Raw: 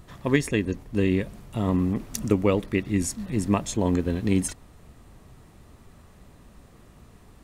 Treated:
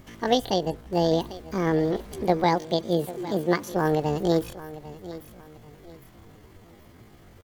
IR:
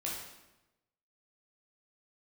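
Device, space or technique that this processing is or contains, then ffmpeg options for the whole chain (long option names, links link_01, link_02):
chipmunk voice: -filter_complex "[0:a]asettb=1/sr,asplit=3[link_01][link_02][link_03];[link_01]atrim=end=2.454[link_04];[link_02]atrim=start=2.45:end=3.75,asetpts=PTS-STARTPTS,afade=type=in:duration=0.004:curve=qsin,afade=type=out:start_time=1.296:duration=0.004:curve=qsin,highpass=frequency=61:width=0.5412,highpass=frequency=61:width=1.3066[link_05];[link_03]atrim=start=3.746[link_06];[link_04][link_05]acrossfade=duration=0.004:curve1=hsin:curve2=qsin[link_07];[link_07][link_06]acrossfade=duration=0.004:curve1=qsin:curve2=hsin,aecho=1:1:793|1586|2379:0.158|0.0491|0.0152,asetrate=76340,aresample=44100,atempo=0.577676,acrossover=split=7600[link_08][link_09];[link_09]acompressor=threshold=-47dB:ratio=4:attack=1:release=60[link_10];[link_08][link_10]amix=inputs=2:normalize=0"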